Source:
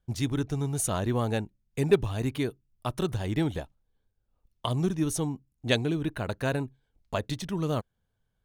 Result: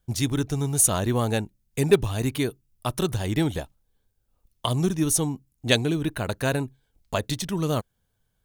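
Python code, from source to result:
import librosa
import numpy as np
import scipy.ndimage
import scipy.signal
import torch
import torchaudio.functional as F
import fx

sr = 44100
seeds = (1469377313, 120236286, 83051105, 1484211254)

y = fx.high_shelf(x, sr, hz=5300.0, db=10.0)
y = F.gain(torch.from_numpy(y), 3.5).numpy()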